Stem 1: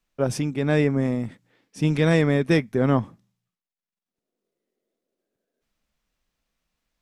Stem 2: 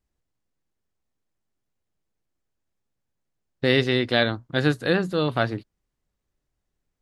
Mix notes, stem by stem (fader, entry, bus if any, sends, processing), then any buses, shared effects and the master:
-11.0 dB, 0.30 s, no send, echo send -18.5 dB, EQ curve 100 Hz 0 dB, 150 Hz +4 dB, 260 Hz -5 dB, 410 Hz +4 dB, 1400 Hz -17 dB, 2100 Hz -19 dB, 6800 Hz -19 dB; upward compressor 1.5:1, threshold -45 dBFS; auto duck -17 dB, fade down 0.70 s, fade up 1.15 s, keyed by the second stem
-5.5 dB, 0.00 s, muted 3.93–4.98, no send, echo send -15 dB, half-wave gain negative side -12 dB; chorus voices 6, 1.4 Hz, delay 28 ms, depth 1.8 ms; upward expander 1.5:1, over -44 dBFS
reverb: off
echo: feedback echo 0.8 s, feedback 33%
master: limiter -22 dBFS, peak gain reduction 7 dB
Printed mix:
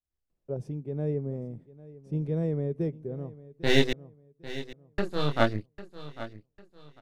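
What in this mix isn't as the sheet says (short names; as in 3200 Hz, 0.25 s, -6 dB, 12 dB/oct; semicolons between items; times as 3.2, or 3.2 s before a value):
stem 2 -5.5 dB -> +4.0 dB; master: missing limiter -22 dBFS, peak gain reduction 7 dB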